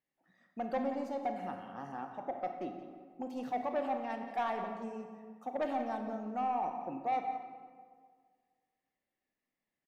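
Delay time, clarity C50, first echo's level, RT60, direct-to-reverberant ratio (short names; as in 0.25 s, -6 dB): 0.176 s, 5.0 dB, -12.5 dB, 1.9 s, 4.0 dB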